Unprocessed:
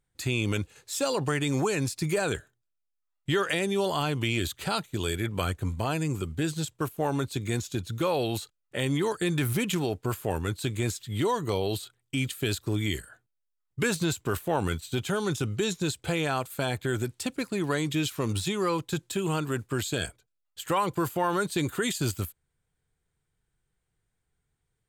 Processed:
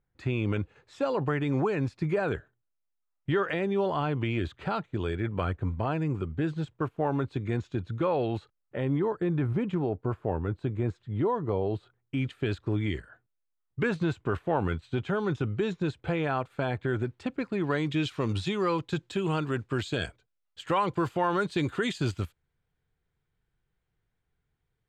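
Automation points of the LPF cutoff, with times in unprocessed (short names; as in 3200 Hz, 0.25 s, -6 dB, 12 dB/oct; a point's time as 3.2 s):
8.31 s 1800 Hz
9.08 s 1100 Hz
11.71 s 1100 Hz
12.32 s 2000 Hz
17.33 s 2000 Hz
18.15 s 3700 Hz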